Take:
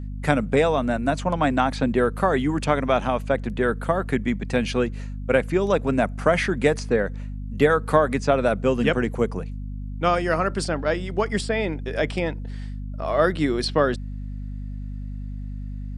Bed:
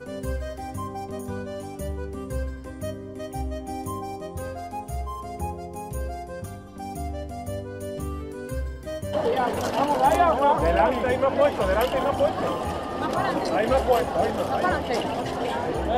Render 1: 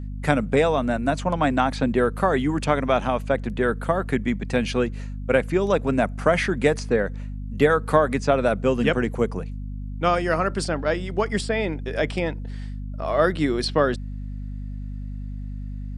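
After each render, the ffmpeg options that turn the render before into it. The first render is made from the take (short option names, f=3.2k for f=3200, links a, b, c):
-af anull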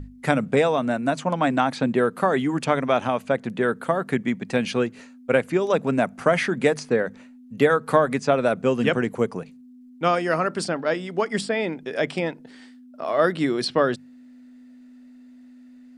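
-af "bandreject=f=50:t=h:w=6,bandreject=f=100:t=h:w=6,bandreject=f=150:t=h:w=6,bandreject=f=200:t=h:w=6"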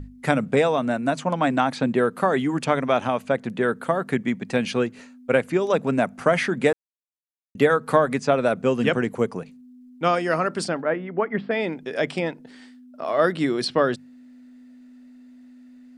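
-filter_complex "[0:a]asettb=1/sr,asplit=3[a][b][c];[a]atrim=end=10.824[d];[b]atrim=start=10.82:end=11.51,asetpts=PTS-STARTPTS,afade=t=in:d=0.004:c=qsin,afade=t=out:st=0.686:d=0.004:c=qsin,lowpass=f=2.2k:w=0.5412,lowpass=f=2.2k:w=1.3066[e];[c]atrim=start=11.506[f];[d][e]acrossfade=d=0.004:c1=hsin:c2=qsin[g];[g][f]acrossfade=d=0.004:c1=qsin:c2=hsin,asplit=3[h][i][j];[h]atrim=end=6.73,asetpts=PTS-STARTPTS,afade=t=out:st=6.726:d=0.004:c=hsin[k];[i]atrim=start=6.73:end=7.55,asetpts=PTS-STARTPTS,volume=0[l];[j]atrim=start=7.55,asetpts=PTS-STARTPTS,afade=t=in:d=0.004:c=hsin[m];[k][l][m]concat=n=3:v=0:a=1"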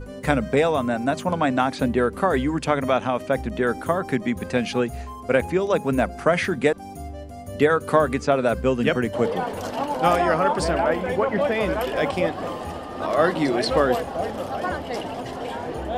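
-filter_complex "[1:a]volume=-3.5dB[a];[0:a][a]amix=inputs=2:normalize=0"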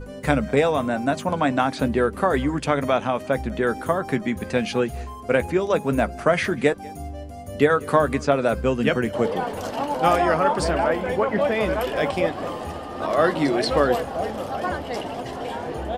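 -filter_complex "[0:a]asplit=2[a][b];[b]adelay=14,volume=-13.5dB[c];[a][c]amix=inputs=2:normalize=0,aecho=1:1:194:0.0631"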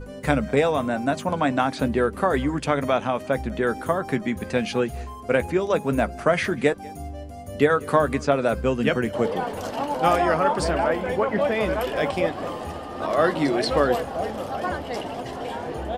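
-af "volume=-1dB"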